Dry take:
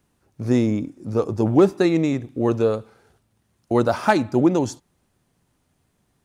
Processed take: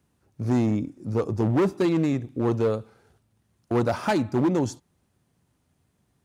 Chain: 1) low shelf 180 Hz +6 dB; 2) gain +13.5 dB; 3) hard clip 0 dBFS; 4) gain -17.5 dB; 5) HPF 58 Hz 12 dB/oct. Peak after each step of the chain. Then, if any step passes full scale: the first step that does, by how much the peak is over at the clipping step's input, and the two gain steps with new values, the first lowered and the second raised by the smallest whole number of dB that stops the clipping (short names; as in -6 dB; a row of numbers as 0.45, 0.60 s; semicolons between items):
-4.0, +9.5, 0.0, -17.5, -13.5 dBFS; step 2, 9.5 dB; step 2 +3.5 dB, step 4 -7.5 dB